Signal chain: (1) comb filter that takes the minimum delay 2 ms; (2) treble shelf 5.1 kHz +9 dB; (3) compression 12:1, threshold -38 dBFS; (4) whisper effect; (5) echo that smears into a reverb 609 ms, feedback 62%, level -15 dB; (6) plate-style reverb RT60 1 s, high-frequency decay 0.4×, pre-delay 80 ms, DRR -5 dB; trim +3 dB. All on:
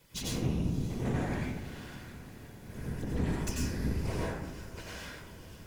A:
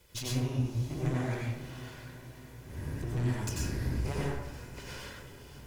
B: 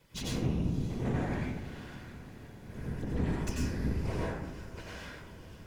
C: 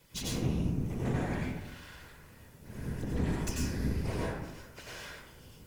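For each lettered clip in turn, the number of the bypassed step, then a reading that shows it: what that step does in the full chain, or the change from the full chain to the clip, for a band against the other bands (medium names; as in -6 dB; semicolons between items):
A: 4, 125 Hz band +2.5 dB; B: 2, 8 kHz band -4.5 dB; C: 5, momentary loudness spread change +4 LU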